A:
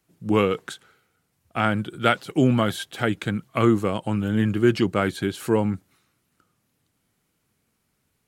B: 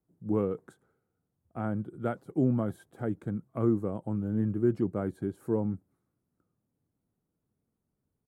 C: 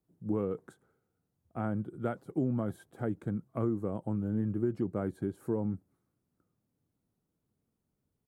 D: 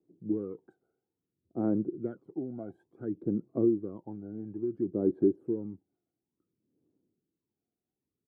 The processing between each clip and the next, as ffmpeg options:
-af "firequalizer=gain_entry='entry(310,0);entry(2800,-28);entry(9200,-14)':delay=0.05:min_phase=1,volume=0.447"
-af "acompressor=threshold=0.0447:ratio=4"
-af "aphaser=in_gain=1:out_gain=1:delay=1.4:decay=0.73:speed=0.58:type=sinusoidal,bandpass=f=350:t=q:w=3:csg=0,volume=1.41"

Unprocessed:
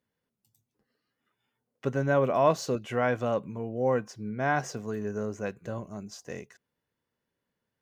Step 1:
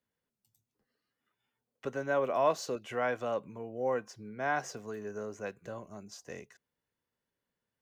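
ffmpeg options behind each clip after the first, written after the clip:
-filter_complex "[0:a]lowshelf=f=330:g=-4.5,acrossover=split=260|780|1400[s0][s1][s2][s3];[s0]acompressor=threshold=0.00447:ratio=6[s4];[s4][s1][s2][s3]amix=inputs=4:normalize=0,lowshelf=f=67:g=7.5,volume=0.668"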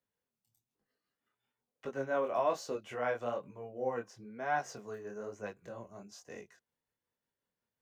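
-filter_complex "[0:a]tremolo=f=5.5:d=0.32,acrossover=split=1000[s0][s1];[s0]crystalizer=i=9.5:c=0[s2];[s2][s1]amix=inputs=2:normalize=0,flanger=delay=19:depth=7.3:speed=1.1"

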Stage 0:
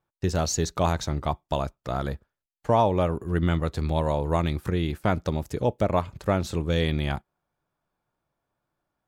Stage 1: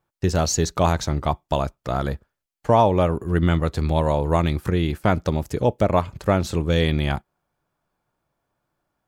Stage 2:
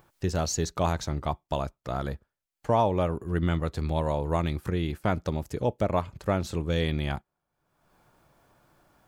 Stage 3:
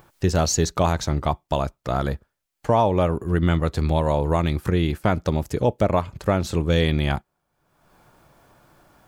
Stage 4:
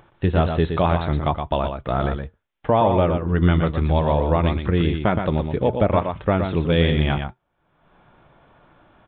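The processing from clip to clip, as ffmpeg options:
-af "bandreject=f=3700:w=29,volume=1.68"
-af "acompressor=mode=upward:threshold=0.0126:ratio=2.5,volume=0.447"
-af "alimiter=limit=0.158:level=0:latency=1:release=255,volume=2.37"
-af "flanger=delay=3.1:depth=2.5:regen=-80:speed=0.67:shape=triangular,aecho=1:1:119:0.473,aresample=8000,aresample=44100,volume=1.88"

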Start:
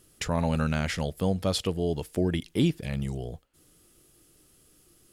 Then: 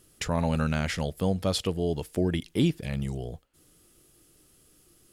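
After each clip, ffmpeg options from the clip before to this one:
-af anull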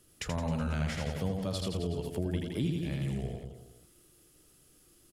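-filter_complex "[0:a]aecho=1:1:80|168|264.8|371.3|488.4:0.631|0.398|0.251|0.158|0.1,acrossover=split=160[s0][s1];[s1]acompressor=threshold=0.0282:ratio=3[s2];[s0][s2]amix=inputs=2:normalize=0,volume=0.631"

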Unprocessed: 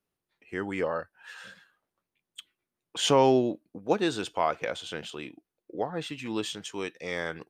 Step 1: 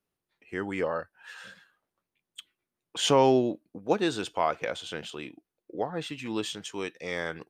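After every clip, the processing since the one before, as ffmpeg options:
-af anull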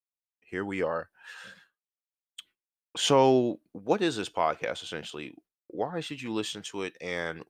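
-af "agate=range=0.0224:threshold=0.002:ratio=3:detection=peak"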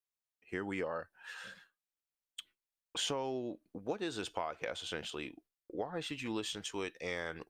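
-af "asubboost=boost=4.5:cutoff=62,acompressor=threshold=0.0282:ratio=12,volume=0.794"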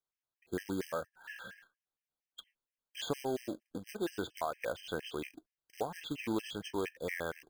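-af "aemphasis=mode=reproduction:type=75kf,acrusher=bits=3:mode=log:mix=0:aa=0.000001,afftfilt=real='re*gt(sin(2*PI*4.3*pts/sr)*(1-2*mod(floor(b*sr/1024/1600),2)),0)':imag='im*gt(sin(2*PI*4.3*pts/sr)*(1-2*mod(floor(b*sr/1024/1600),2)),0)':win_size=1024:overlap=0.75,volume=1.68"

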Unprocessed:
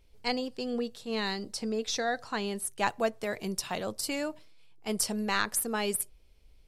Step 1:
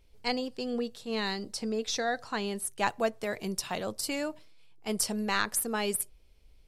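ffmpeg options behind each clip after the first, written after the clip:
-af anull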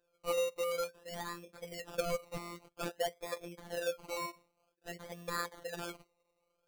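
-filter_complex "[0:a]asplit=3[s0][s1][s2];[s0]bandpass=f=530:t=q:w=8,volume=1[s3];[s1]bandpass=f=1840:t=q:w=8,volume=0.501[s4];[s2]bandpass=f=2480:t=q:w=8,volume=0.355[s5];[s3][s4][s5]amix=inputs=3:normalize=0,acrusher=samples=21:mix=1:aa=0.000001:lfo=1:lforange=12.6:lforate=0.52,afftfilt=real='hypot(re,im)*cos(PI*b)':imag='0':win_size=1024:overlap=0.75,volume=2.51"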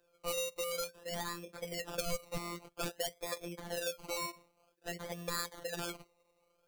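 -filter_complex "[0:a]acrossover=split=140|3000[s0][s1][s2];[s1]acompressor=threshold=0.00708:ratio=6[s3];[s0][s3][s2]amix=inputs=3:normalize=0,volume=1.88"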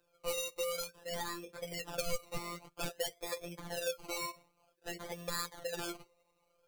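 -af "flanger=delay=6.5:depth=2.2:regen=31:speed=1.1:shape=triangular,volume=1.5"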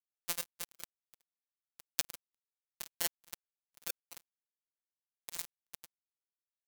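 -filter_complex "[0:a]acrossover=split=620[s0][s1];[s0]asoftclip=type=tanh:threshold=0.01[s2];[s2][s1]amix=inputs=2:normalize=0,acrusher=bits=3:mix=0:aa=0.5,volume=4.22"

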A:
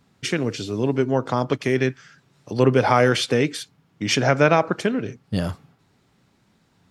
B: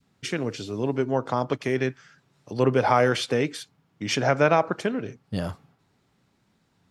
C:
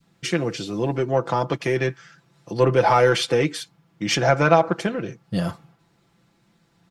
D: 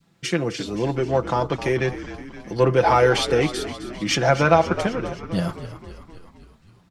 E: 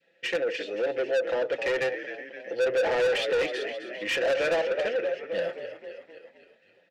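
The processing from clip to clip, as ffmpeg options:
-af "adynamicequalizer=threshold=0.0282:dfrequency=810:dqfactor=0.82:tfrequency=810:tqfactor=0.82:attack=5:release=100:ratio=0.375:range=2:mode=boostabove:tftype=bell,volume=0.531"
-filter_complex "[0:a]asplit=2[s0][s1];[s1]asoftclip=type=tanh:threshold=0.126,volume=0.668[s2];[s0][s2]amix=inputs=2:normalize=0,aecho=1:1:5.9:0.63,volume=0.891"
-filter_complex "[0:a]asplit=8[s0][s1][s2][s3][s4][s5][s6][s7];[s1]adelay=261,afreqshift=-58,volume=0.224[s8];[s2]adelay=522,afreqshift=-116,volume=0.141[s9];[s3]adelay=783,afreqshift=-174,volume=0.0891[s10];[s4]adelay=1044,afreqshift=-232,volume=0.0562[s11];[s5]adelay=1305,afreqshift=-290,volume=0.0351[s12];[s6]adelay=1566,afreqshift=-348,volume=0.0221[s13];[s7]adelay=1827,afreqshift=-406,volume=0.014[s14];[s0][s8][s9][s10][s11][s12][s13][s14]amix=inputs=8:normalize=0"
-filter_complex "[0:a]asplit=3[s0][s1][s2];[s0]bandpass=f=530:t=q:w=8,volume=1[s3];[s1]bandpass=f=1840:t=q:w=8,volume=0.501[s4];[s2]bandpass=f=2480:t=q:w=8,volume=0.355[s5];[s3][s4][s5]amix=inputs=3:normalize=0,asplit=2[s6][s7];[s7]highpass=f=720:p=1,volume=25.1,asoftclip=type=tanh:threshold=0.299[s8];[s6][s8]amix=inputs=2:normalize=0,lowpass=f=5700:p=1,volume=0.501,volume=0.447"

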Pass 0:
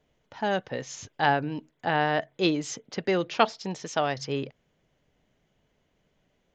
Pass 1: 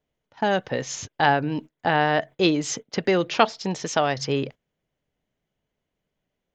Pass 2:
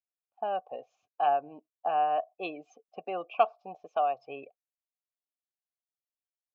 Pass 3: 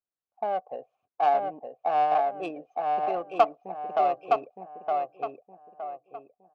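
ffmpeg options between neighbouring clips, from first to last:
-filter_complex "[0:a]agate=range=0.126:threshold=0.00794:ratio=16:detection=peak,asplit=2[s0][s1];[s1]acompressor=threshold=0.0282:ratio=6,volume=1.12[s2];[s0][s2]amix=inputs=2:normalize=0,volume=1.19"
-filter_complex "[0:a]asplit=3[s0][s1][s2];[s0]bandpass=f=730:t=q:w=8,volume=1[s3];[s1]bandpass=f=1090:t=q:w=8,volume=0.501[s4];[s2]bandpass=f=2440:t=q:w=8,volume=0.355[s5];[s3][s4][s5]amix=inputs=3:normalize=0,afftdn=nr=21:nf=-45"
-filter_complex "[0:a]asplit=2[s0][s1];[s1]adelay=915,lowpass=f=3400:p=1,volume=0.708,asplit=2[s2][s3];[s3]adelay=915,lowpass=f=3400:p=1,volume=0.37,asplit=2[s4][s5];[s5]adelay=915,lowpass=f=3400:p=1,volume=0.37,asplit=2[s6][s7];[s7]adelay=915,lowpass=f=3400:p=1,volume=0.37,asplit=2[s8][s9];[s9]adelay=915,lowpass=f=3400:p=1,volume=0.37[s10];[s2][s4][s6][s8][s10]amix=inputs=5:normalize=0[s11];[s0][s11]amix=inputs=2:normalize=0,adynamicsmooth=sensitivity=2:basefreq=1600,volume=1.5"

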